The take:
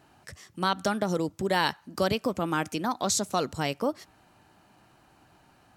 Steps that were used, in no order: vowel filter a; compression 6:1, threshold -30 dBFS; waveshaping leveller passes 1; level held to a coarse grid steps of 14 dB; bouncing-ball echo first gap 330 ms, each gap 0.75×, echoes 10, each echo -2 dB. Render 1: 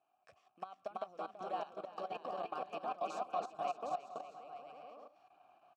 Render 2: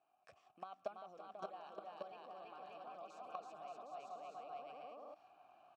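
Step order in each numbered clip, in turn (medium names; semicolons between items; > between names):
compression > waveshaping leveller > bouncing-ball echo > level held to a coarse grid > vowel filter; bouncing-ball echo > compression > waveshaping leveller > level held to a coarse grid > vowel filter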